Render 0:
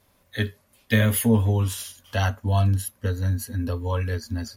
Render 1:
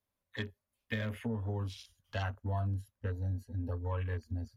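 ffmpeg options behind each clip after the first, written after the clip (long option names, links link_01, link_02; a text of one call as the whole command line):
ffmpeg -i in.wav -filter_complex "[0:a]acrossover=split=140|7800[link_01][link_02][link_03];[link_01]acompressor=threshold=-36dB:ratio=4[link_04];[link_02]acompressor=threshold=-25dB:ratio=4[link_05];[link_03]acompressor=threshold=-46dB:ratio=4[link_06];[link_04][link_05][link_06]amix=inputs=3:normalize=0,afwtdn=0.0112,asubboost=boost=4.5:cutoff=98,volume=-9dB" out.wav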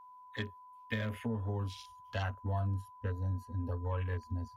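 ffmpeg -i in.wav -af "aeval=exprs='val(0)+0.00251*sin(2*PI*1000*n/s)':channel_layout=same" out.wav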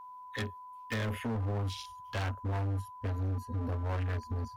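ffmpeg -i in.wav -af "asoftclip=type=hard:threshold=-37dB,volume=6.5dB" out.wav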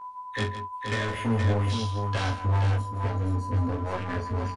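ffmpeg -i in.wav -filter_complex "[0:a]flanger=delay=16:depth=3.4:speed=0.98,asplit=2[link_01][link_02];[link_02]aecho=0:1:43|162|474:0.376|0.266|0.531[link_03];[link_01][link_03]amix=inputs=2:normalize=0,aresample=22050,aresample=44100,volume=9dB" out.wav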